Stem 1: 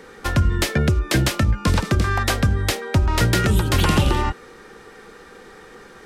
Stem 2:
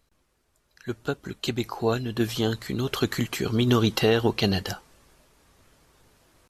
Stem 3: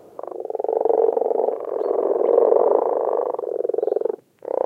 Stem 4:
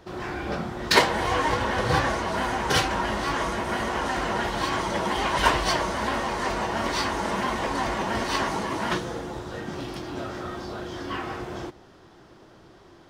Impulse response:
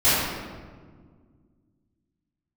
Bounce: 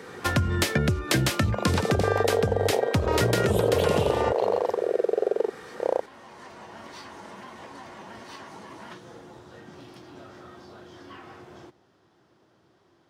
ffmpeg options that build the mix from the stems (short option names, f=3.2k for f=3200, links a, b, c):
-filter_complex "[0:a]volume=0dB[a];[1:a]volume=-16dB,asplit=2[b][c];[2:a]adynamicsmooth=sensitivity=6.5:basefreq=770,adelay=1350,volume=1dB[d];[3:a]acompressor=threshold=-28dB:ratio=5,volume=-11.5dB[e];[c]apad=whole_len=577686[f];[e][f]sidechaincompress=threshold=-56dB:ratio=8:attack=16:release=1430[g];[a][b][d][g]amix=inputs=4:normalize=0,highpass=f=82:w=0.5412,highpass=f=82:w=1.3066,acompressor=threshold=-19dB:ratio=6"